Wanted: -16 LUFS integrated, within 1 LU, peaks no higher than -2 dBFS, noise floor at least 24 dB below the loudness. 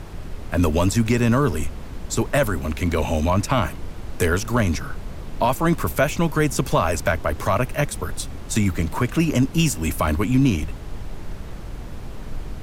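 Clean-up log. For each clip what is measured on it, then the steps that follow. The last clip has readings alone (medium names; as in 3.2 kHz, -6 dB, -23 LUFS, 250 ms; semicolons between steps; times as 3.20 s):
noise floor -35 dBFS; noise floor target -46 dBFS; loudness -22.0 LUFS; peak level -6.5 dBFS; loudness target -16.0 LUFS
-> noise print and reduce 11 dB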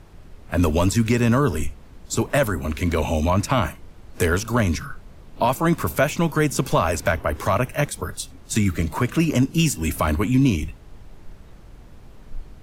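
noise floor -45 dBFS; noise floor target -46 dBFS
-> noise print and reduce 6 dB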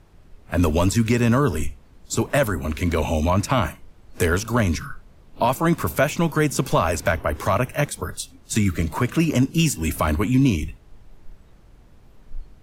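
noise floor -51 dBFS; loudness -22.0 LUFS; peak level -7.0 dBFS; loudness target -16.0 LUFS
-> trim +6 dB; peak limiter -2 dBFS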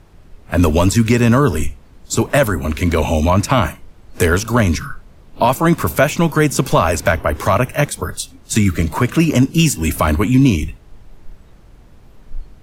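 loudness -16.0 LUFS; peak level -2.0 dBFS; noise floor -45 dBFS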